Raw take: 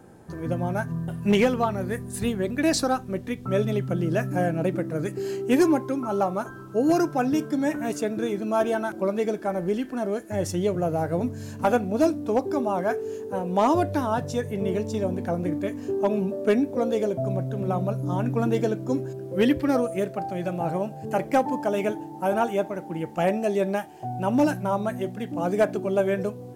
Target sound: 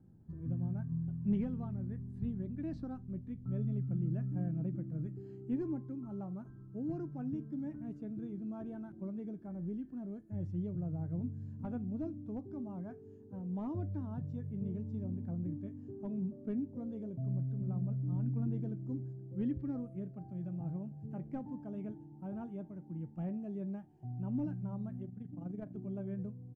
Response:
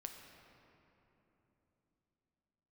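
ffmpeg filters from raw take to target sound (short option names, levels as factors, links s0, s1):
-filter_complex "[0:a]acrossover=split=4300[s0][s1];[s1]acompressor=threshold=0.00141:ratio=4:attack=1:release=60[s2];[s0][s2]amix=inputs=2:normalize=0,asplit=3[s3][s4][s5];[s3]afade=t=out:st=25.03:d=0.02[s6];[s4]tremolo=f=24:d=0.621,afade=t=in:st=25.03:d=0.02,afade=t=out:st=25.74:d=0.02[s7];[s5]afade=t=in:st=25.74:d=0.02[s8];[s6][s7][s8]amix=inputs=3:normalize=0,firequalizer=gain_entry='entry(150,0);entry(470,-21);entry(2600,-29)':delay=0.05:min_phase=1,volume=0.501"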